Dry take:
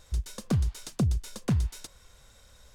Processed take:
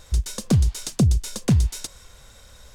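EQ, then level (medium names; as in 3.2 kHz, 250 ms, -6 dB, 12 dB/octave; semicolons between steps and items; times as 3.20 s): dynamic bell 1.3 kHz, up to -6 dB, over -51 dBFS, Q 1; dynamic bell 7.2 kHz, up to +4 dB, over -56 dBFS, Q 0.72; +8.0 dB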